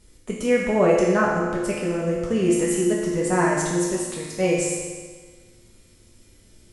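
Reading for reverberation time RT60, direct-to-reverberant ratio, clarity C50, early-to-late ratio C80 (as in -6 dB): 1.5 s, -5.5 dB, 0.5 dB, 2.5 dB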